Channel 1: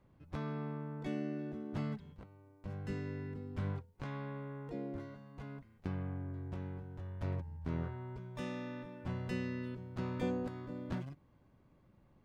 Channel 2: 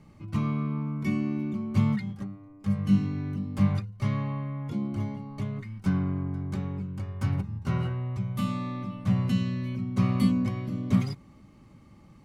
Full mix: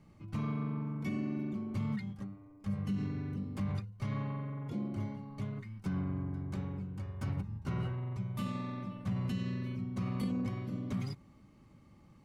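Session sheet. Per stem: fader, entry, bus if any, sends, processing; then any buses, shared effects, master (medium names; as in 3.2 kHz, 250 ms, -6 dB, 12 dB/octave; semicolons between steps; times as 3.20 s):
-4.5 dB, 0.00 s, no send, ring modulator 22 Hz
-6.5 dB, 0.00 s, no send, none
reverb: none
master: peak limiter -27 dBFS, peak gain reduction 9 dB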